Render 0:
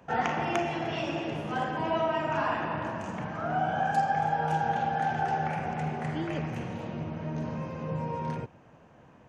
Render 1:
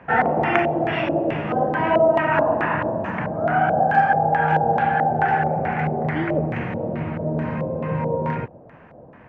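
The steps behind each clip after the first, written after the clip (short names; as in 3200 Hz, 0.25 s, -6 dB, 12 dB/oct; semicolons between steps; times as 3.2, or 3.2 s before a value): LFO low-pass square 2.3 Hz 590–2000 Hz; gain +8 dB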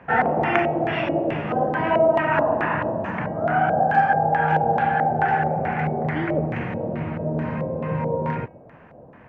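de-hum 319.1 Hz, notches 9; gain -1 dB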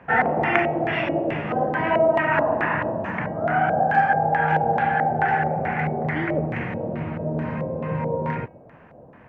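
dynamic EQ 2000 Hz, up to +5 dB, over -40 dBFS, Q 2.7; gain -1 dB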